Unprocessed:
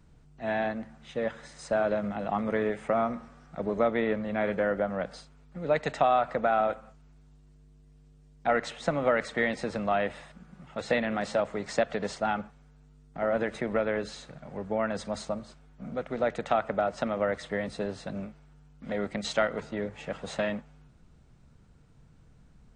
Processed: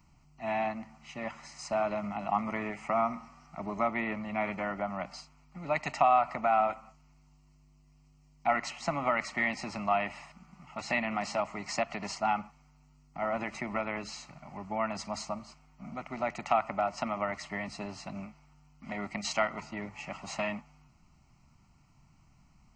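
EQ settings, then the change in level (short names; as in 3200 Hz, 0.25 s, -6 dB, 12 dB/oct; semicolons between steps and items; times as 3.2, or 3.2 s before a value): low shelf 160 Hz -6 dB; low shelf 380 Hz -5.5 dB; fixed phaser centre 2400 Hz, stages 8; +4.5 dB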